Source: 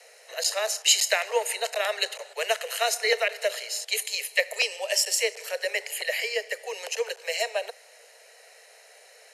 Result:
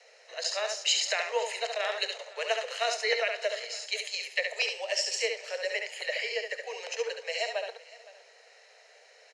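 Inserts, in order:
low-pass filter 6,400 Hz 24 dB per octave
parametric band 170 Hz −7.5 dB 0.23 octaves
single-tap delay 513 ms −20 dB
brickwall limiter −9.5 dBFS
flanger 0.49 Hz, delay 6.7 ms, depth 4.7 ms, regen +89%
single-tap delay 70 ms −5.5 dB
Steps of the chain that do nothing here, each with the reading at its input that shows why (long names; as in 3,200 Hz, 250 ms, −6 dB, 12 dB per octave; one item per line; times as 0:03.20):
parametric band 170 Hz: nothing at its input below 360 Hz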